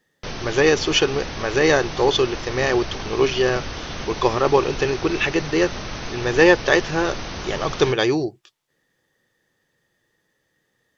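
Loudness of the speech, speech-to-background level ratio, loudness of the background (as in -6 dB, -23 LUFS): -20.5 LUFS, 10.5 dB, -31.0 LUFS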